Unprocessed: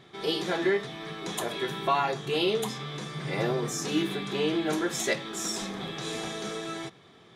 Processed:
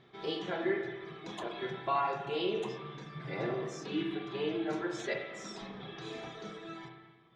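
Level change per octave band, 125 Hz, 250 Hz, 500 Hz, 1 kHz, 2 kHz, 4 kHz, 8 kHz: −8.5, −6.5, −6.0, −5.0, −7.5, −10.5, −19.0 decibels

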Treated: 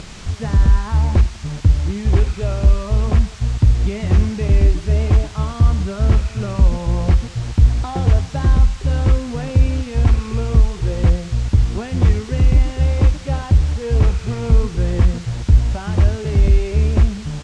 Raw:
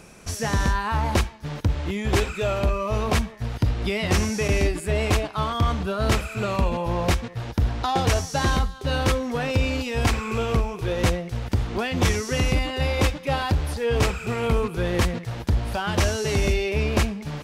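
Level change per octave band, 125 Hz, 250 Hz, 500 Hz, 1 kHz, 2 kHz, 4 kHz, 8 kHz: +9.5, +3.0, −1.5, −4.0, −6.0, −5.0, −4.5 decibels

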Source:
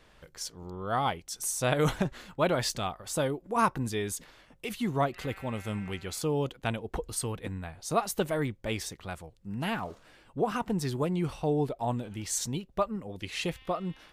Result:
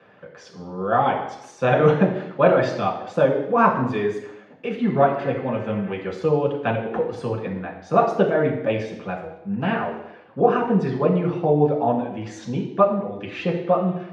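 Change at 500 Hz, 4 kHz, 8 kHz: +12.5 dB, −2.5 dB, below −15 dB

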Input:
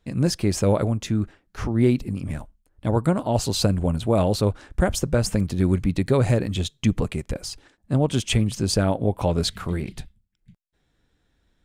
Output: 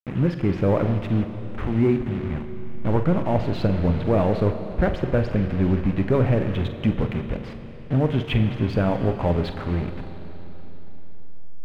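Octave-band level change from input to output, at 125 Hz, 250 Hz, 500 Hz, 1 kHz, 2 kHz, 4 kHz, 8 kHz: +0.5 dB, +0.5 dB, +0.5 dB, +0.5 dB, +0.5 dB, −9.0 dB, below −25 dB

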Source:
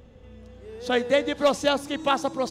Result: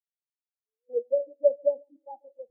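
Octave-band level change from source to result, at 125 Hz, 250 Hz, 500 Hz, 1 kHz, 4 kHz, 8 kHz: below −40 dB, below −25 dB, −2.5 dB, below −20 dB, below −40 dB, below −40 dB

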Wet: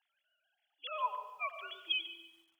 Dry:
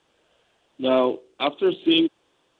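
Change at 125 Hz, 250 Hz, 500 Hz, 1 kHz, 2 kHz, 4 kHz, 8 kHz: below −40 dB, below −40 dB, −27.5 dB, −8.5 dB, −7.5 dB, −12.0 dB, can't be measured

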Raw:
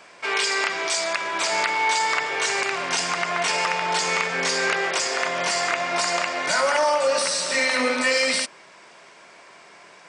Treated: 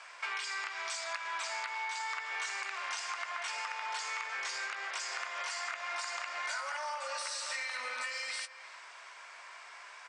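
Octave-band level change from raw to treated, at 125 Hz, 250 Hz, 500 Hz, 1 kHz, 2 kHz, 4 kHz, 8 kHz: below −40 dB, below −35 dB, −24.0 dB, −14.5 dB, −13.5 dB, −15.0 dB, −15.5 dB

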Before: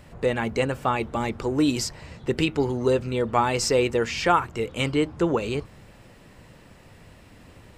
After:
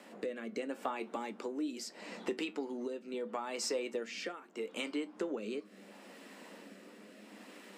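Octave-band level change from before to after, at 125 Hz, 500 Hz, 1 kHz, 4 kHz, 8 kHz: below −30 dB, −14.5 dB, −18.0 dB, −13.0 dB, −12.0 dB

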